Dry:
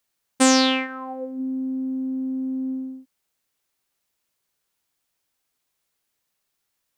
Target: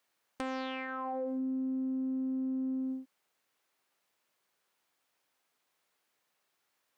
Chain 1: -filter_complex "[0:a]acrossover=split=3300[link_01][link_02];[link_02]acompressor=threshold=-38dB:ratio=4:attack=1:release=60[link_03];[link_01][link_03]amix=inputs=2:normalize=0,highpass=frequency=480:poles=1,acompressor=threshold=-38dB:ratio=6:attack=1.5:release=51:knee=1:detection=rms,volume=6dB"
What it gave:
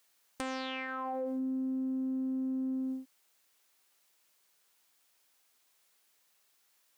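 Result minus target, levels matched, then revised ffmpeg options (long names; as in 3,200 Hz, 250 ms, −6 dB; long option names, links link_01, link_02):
8,000 Hz band +8.0 dB
-filter_complex "[0:a]acrossover=split=3300[link_01][link_02];[link_02]acompressor=threshold=-38dB:ratio=4:attack=1:release=60[link_03];[link_01][link_03]amix=inputs=2:normalize=0,highpass=frequency=480:poles=1,highshelf=frequency=3200:gain=-12,acompressor=threshold=-38dB:ratio=6:attack=1.5:release=51:knee=1:detection=rms,volume=6dB"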